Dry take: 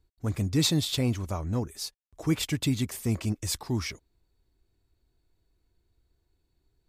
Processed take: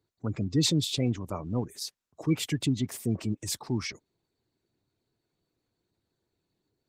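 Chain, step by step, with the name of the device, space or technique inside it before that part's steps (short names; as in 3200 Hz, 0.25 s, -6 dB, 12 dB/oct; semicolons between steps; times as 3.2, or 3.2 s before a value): noise-suppressed video call (HPF 110 Hz 24 dB/oct; spectral gate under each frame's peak -25 dB strong; Opus 16 kbps 48000 Hz)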